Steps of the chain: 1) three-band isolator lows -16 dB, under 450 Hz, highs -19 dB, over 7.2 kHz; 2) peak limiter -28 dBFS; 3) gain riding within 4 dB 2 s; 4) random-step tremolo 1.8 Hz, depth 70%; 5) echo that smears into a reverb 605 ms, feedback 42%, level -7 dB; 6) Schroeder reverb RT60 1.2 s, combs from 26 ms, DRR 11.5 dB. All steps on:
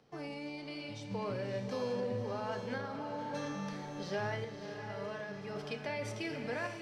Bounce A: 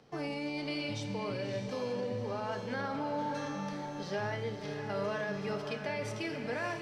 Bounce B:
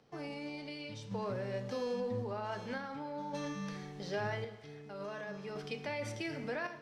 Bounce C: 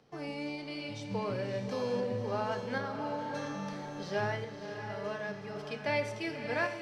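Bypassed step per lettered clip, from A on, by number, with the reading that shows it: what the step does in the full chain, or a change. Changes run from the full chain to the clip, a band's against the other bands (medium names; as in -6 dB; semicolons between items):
4, momentary loudness spread change -3 LU; 5, echo-to-direct -5.0 dB to -11.5 dB; 2, mean gain reduction 1.5 dB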